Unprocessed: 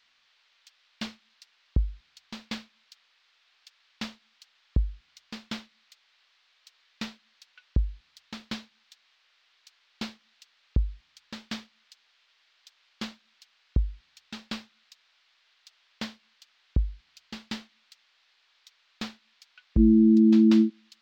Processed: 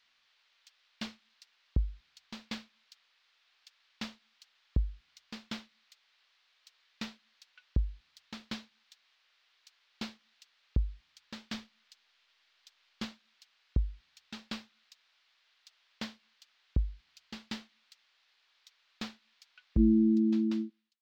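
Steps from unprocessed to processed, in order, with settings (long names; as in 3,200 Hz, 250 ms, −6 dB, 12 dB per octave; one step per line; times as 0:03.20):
fade-out on the ending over 1.27 s
0:11.54–0:13.05: low-shelf EQ 120 Hz +9 dB
level −4.5 dB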